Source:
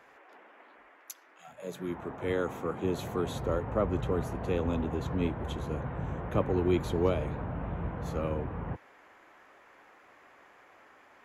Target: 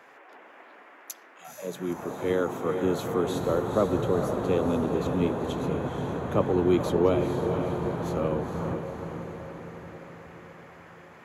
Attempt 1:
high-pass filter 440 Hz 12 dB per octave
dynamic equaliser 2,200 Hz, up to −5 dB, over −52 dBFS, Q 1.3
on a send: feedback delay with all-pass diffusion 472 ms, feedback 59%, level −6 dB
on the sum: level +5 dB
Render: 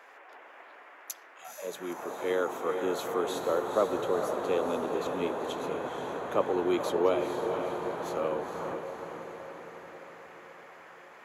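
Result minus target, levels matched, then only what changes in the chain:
125 Hz band −13.0 dB
change: high-pass filter 130 Hz 12 dB per octave

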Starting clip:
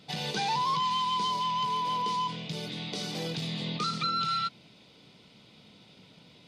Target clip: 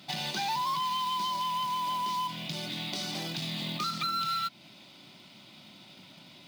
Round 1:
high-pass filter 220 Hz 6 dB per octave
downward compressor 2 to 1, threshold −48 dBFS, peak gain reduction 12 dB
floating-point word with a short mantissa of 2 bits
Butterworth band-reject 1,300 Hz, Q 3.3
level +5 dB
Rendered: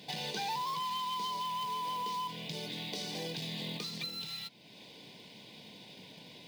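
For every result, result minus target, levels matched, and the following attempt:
500 Hz band +6.5 dB; downward compressor: peak gain reduction +4.5 dB
high-pass filter 220 Hz 6 dB per octave
downward compressor 2 to 1, threshold −48 dBFS, peak gain reduction 12 dB
floating-point word with a short mantissa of 2 bits
Butterworth band-reject 460 Hz, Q 3.3
level +5 dB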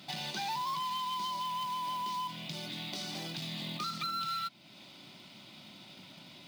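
downward compressor: peak gain reduction +4.5 dB
high-pass filter 220 Hz 6 dB per octave
downward compressor 2 to 1, threshold −39 dBFS, peak gain reduction 7.5 dB
floating-point word with a short mantissa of 2 bits
Butterworth band-reject 460 Hz, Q 3.3
level +5 dB

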